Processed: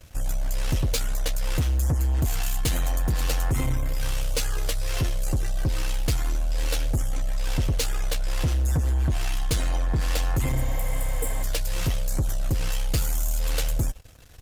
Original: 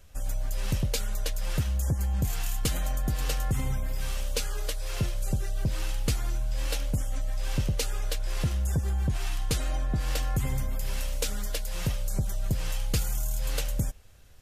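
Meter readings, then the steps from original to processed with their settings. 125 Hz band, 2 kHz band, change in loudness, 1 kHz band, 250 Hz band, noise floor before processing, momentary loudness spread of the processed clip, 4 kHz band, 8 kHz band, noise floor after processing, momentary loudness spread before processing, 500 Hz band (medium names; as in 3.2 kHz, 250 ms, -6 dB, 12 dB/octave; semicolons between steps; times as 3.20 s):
+3.5 dB, +4.0 dB, +4.0 dB, +4.5 dB, +2.5 dB, -31 dBFS, 5 LU, +3.0 dB, +3.5 dB, -25 dBFS, 5 LU, +3.5 dB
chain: waveshaping leveller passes 3; comb of notches 200 Hz; spectral replace 10.58–11.41 s, 500–7300 Hz before; trim -1.5 dB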